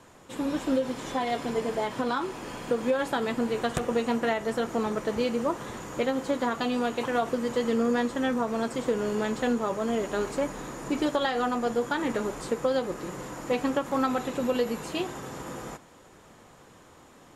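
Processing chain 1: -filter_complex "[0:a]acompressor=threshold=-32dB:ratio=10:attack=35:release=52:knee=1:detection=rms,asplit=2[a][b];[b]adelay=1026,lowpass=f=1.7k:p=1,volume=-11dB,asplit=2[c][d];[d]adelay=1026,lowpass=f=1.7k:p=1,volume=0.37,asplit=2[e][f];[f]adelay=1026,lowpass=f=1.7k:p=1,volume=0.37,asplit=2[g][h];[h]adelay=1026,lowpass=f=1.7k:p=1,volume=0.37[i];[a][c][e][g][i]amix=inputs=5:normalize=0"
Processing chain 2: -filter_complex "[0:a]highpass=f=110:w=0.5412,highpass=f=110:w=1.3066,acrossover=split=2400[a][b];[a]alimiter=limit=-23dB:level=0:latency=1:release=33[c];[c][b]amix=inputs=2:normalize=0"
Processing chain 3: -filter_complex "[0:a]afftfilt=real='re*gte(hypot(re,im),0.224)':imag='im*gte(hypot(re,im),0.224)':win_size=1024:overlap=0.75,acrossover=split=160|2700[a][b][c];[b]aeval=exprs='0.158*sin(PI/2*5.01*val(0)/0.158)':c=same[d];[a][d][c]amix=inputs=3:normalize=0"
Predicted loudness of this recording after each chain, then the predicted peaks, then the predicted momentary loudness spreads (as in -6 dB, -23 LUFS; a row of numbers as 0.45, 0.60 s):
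-33.5, -32.0, -21.5 LUFS; -15.0, -15.5, -13.5 dBFS; 5, 5, 6 LU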